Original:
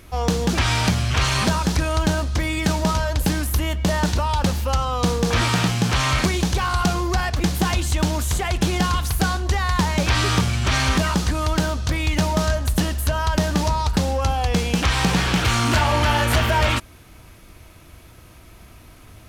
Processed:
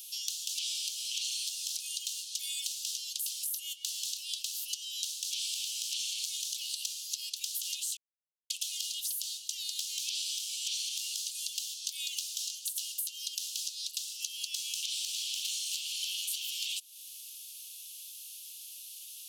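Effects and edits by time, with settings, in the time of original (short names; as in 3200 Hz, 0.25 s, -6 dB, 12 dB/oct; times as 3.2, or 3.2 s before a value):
7.97–8.5 mute
whole clip: steep high-pass 2800 Hz 72 dB/oct; high shelf 3900 Hz +11 dB; compressor 6:1, threshold -35 dBFS; gain +1 dB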